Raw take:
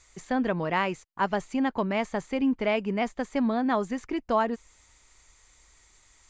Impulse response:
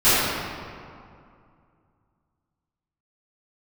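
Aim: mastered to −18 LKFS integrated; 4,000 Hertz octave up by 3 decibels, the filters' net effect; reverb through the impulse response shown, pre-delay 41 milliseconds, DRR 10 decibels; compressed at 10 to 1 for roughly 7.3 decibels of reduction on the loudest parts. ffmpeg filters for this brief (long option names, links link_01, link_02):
-filter_complex "[0:a]equalizer=frequency=4000:width_type=o:gain=4.5,acompressor=threshold=-28dB:ratio=10,asplit=2[link_01][link_02];[1:a]atrim=start_sample=2205,adelay=41[link_03];[link_02][link_03]afir=irnorm=-1:irlink=0,volume=-33.5dB[link_04];[link_01][link_04]amix=inputs=2:normalize=0,volume=15.5dB"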